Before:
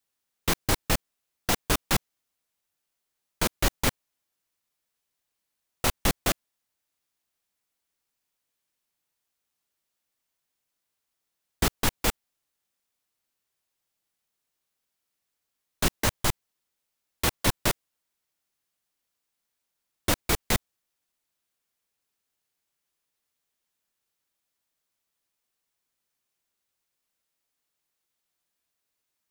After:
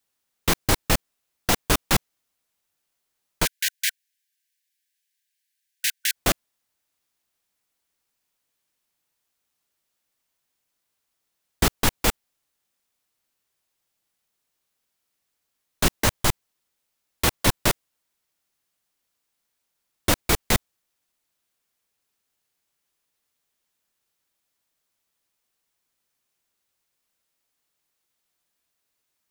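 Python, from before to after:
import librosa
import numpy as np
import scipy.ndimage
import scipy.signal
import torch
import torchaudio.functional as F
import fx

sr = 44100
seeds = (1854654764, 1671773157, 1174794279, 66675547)

y = fx.brickwall_highpass(x, sr, low_hz=1500.0, at=(3.44, 6.14), fade=0.02)
y = F.gain(torch.from_numpy(y), 4.0).numpy()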